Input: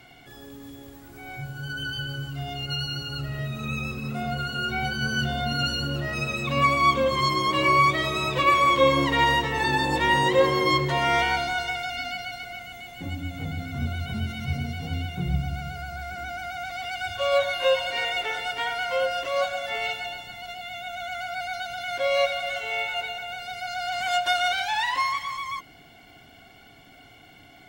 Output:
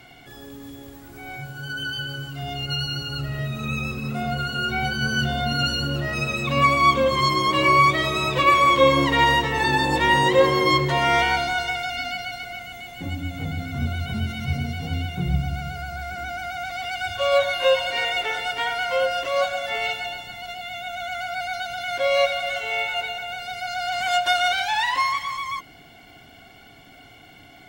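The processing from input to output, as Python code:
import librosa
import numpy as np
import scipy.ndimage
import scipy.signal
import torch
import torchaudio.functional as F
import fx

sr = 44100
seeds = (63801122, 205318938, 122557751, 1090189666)

y = fx.low_shelf(x, sr, hz=120.0, db=-9.5, at=(1.37, 2.43))
y = y * 10.0 ** (3.0 / 20.0)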